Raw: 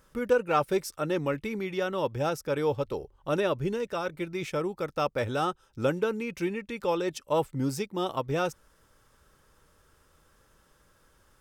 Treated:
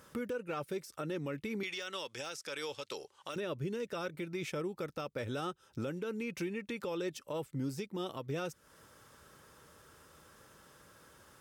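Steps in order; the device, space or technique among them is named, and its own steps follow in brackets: 1.63–3.36 s: frequency weighting ITU-R 468; dynamic bell 860 Hz, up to -7 dB, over -43 dBFS, Q 1.2; podcast mastering chain (high-pass 99 Hz 12 dB/octave; de-esser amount 85%; compression 2.5:1, threshold -44 dBFS, peak gain reduction 15.5 dB; peak limiter -34 dBFS, peak gain reduction 6.5 dB; trim +5.5 dB; MP3 96 kbps 48 kHz)

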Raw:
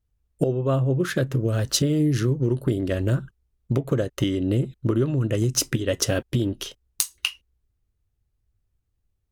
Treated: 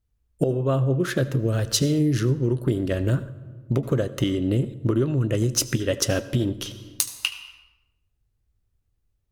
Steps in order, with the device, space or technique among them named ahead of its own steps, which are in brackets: compressed reverb return (on a send at -6 dB: reverberation RT60 0.95 s, pre-delay 72 ms + compression 6:1, threshold -29 dBFS, peak gain reduction 12.5 dB)

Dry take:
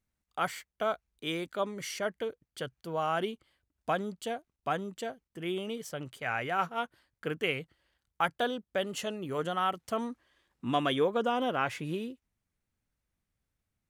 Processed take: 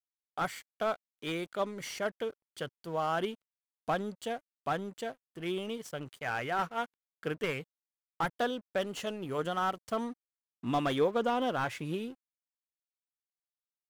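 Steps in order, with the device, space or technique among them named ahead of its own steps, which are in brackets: early transistor amplifier (crossover distortion -54.5 dBFS; slew-rate limiter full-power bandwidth 59 Hz)

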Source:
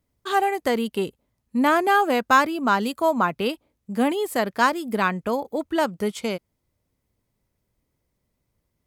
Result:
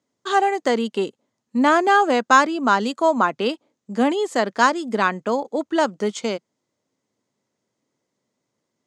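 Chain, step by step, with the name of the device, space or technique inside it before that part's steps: television speaker (cabinet simulation 160–7500 Hz, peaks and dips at 170 Hz -7 dB, 2.4 kHz -4 dB, 6.7 kHz +6 dB); trim +3 dB

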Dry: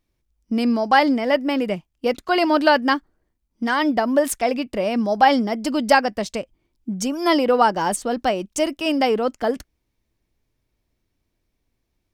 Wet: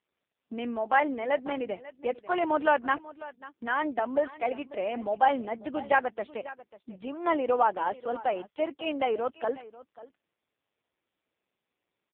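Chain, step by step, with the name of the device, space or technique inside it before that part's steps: 4.89–5.32 s: dynamic bell 2.5 kHz, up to -4 dB, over -36 dBFS, Q 2.5; satellite phone (band-pass 390–3400 Hz; delay 543 ms -18 dB; trim -6 dB; AMR-NB 5.15 kbps 8 kHz)

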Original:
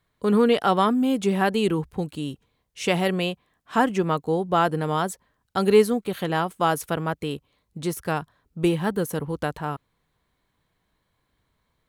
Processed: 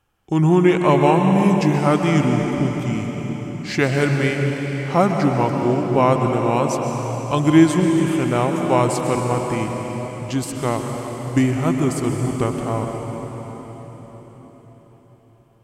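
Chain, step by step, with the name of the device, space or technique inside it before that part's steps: slowed and reverbed (tape speed -24%; reverberation RT60 4.9 s, pre-delay 116 ms, DRR 2.5 dB); trim +3.5 dB

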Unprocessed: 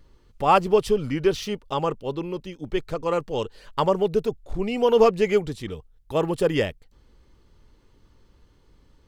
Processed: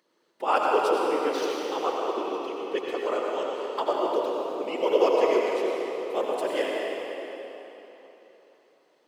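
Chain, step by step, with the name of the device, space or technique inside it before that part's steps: 1.83–3.07 s: comb 2.7 ms, depth 84%; whispering ghost (whisper effect; high-pass 330 Hz 24 dB/octave; reverberation RT60 3.6 s, pre-delay 76 ms, DRR -2.5 dB); trim -6 dB

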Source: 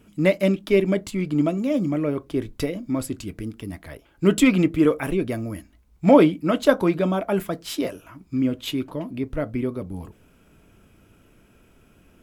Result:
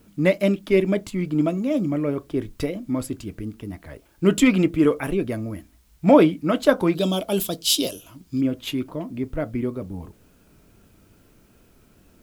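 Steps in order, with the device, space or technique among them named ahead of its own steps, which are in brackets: 6.95–8.41 s: FFT filter 490 Hz 0 dB, 2 kHz -9 dB, 3.2 kHz +14 dB; plain cassette with noise reduction switched in (tape noise reduction on one side only decoder only; wow and flutter; white noise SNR 42 dB)

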